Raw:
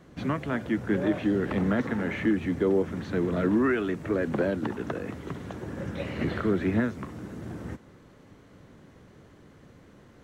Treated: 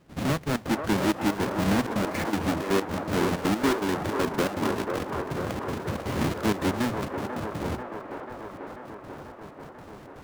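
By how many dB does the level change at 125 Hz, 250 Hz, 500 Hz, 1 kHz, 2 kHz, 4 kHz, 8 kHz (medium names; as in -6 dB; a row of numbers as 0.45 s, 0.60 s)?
+1.0 dB, 0.0 dB, 0.0 dB, +8.0 dB, +2.0 dB, +10.5 dB, no reading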